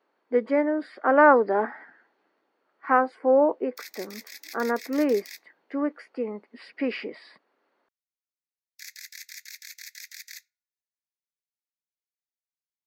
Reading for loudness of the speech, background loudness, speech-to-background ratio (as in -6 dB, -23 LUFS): -24.0 LUFS, -42.5 LUFS, 18.5 dB